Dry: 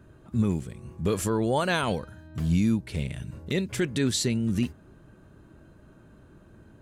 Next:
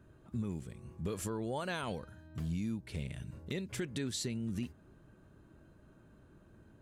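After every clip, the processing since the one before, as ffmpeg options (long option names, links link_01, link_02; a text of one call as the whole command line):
ffmpeg -i in.wav -af "acompressor=threshold=-27dB:ratio=3,volume=-7.5dB" out.wav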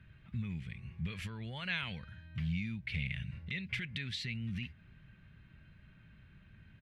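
ffmpeg -i in.wav -af "alimiter=level_in=6.5dB:limit=-24dB:level=0:latency=1:release=231,volume=-6.5dB,firequalizer=gain_entry='entry(170,0);entry(310,-17);entry(1200,-7);entry(2100,12);entry(7100,-18)':delay=0.05:min_phase=1,volume=3.5dB" out.wav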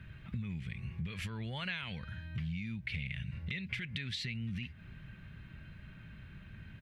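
ffmpeg -i in.wav -af "acompressor=threshold=-45dB:ratio=4,volume=8dB" out.wav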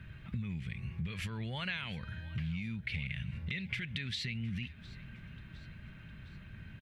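ffmpeg -i in.wav -af "aecho=1:1:710|1420|2130|2840:0.1|0.055|0.0303|0.0166,volume=1dB" out.wav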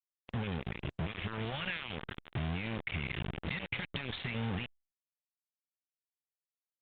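ffmpeg -i in.wav -af "acrusher=bits=5:mix=0:aa=0.000001,aresample=8000,aresample=44100" -ar 48000 -c:a libopus -b:a 24k out.opus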